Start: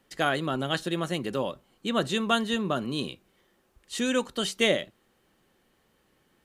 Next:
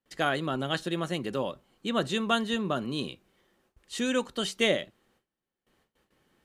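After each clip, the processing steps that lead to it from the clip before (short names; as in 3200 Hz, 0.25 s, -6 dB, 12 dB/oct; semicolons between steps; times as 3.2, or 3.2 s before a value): gate with hold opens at -57 dBFS; high shelf 10000 Hz -5 dB; gain -1.5 dB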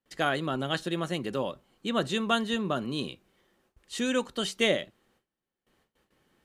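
nothing audible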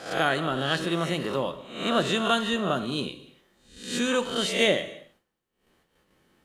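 spectral swells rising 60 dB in 0.55 s; non-linear reverb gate 0.33 s falling, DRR 10 dB; gain +1.5 dB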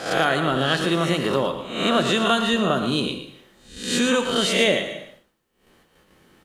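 compressor 2:1, threshold -29 dBFS, peak gain reduction 7 dB; on a send: echo 0.115 s -10 dB; on the sum: gain +9 dB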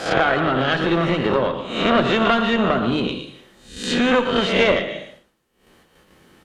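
added harmonics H 4 -14 dB, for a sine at -4.5 dBFS; treble ducked by the level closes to 2700 Hz, closed at -20 dBFS; gain +3.5 dB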